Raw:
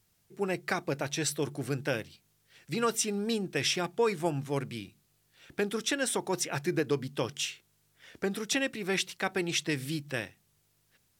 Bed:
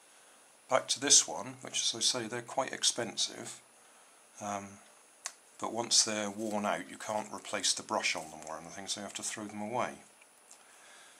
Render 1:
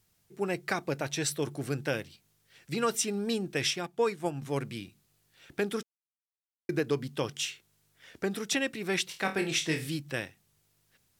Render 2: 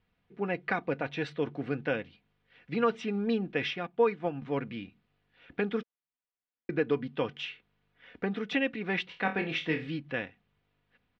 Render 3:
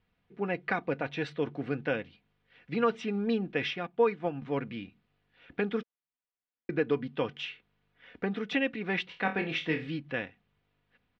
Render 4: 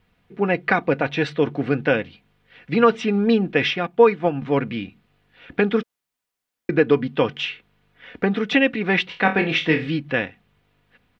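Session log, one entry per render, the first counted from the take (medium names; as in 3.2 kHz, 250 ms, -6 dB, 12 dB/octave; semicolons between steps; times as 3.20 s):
3.70–4.42 s: upward expansion, over -41 dBFS; 5.83–6.69 s: mute; 9.08–9.88 s: flutter echo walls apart 4.3 m, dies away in 0.27 s
low-pass 3 kHz 24 dB/octave; comb 4.1 ms, depth 44%
no audible change
trim +11.5 dB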